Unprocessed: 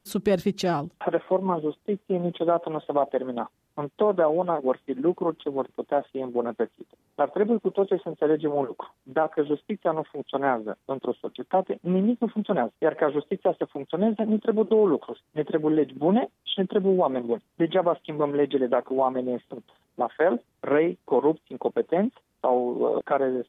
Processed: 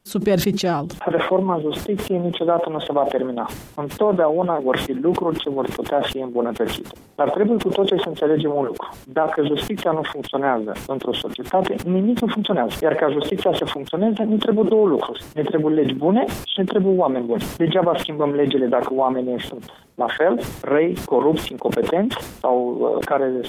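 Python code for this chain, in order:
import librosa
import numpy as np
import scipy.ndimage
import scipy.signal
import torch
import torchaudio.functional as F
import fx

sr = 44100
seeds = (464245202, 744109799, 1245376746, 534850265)

y = fx.sustainer(x, sr, db_per_s=73.0)
y = y * 10.0 ** (4.0 / 20.0)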